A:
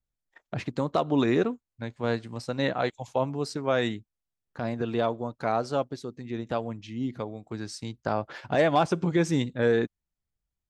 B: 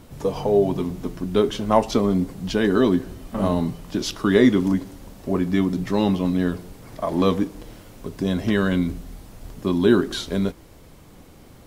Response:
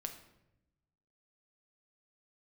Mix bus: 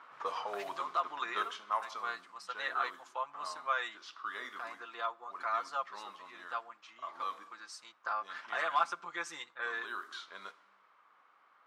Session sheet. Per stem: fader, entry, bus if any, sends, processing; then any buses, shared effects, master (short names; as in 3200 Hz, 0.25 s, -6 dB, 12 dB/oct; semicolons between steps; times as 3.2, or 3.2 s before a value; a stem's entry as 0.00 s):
-11.5 dB, 0.00 s, send -17.5 dB, comb 5.8 ms, depth 73%
1.14 s -4 dB -> 1.93 s -15.5 dB, 0.00 s, send -6.5 dB, low-pass opened by the level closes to 2000 Hz, open at -13.5 dBFS; auto duck -11 dB, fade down 0.50 s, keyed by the first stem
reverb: on, RT60 0.90 s, pre-delay 6 ms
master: resonant high-pass 1200 Hz, resonance Q 3.9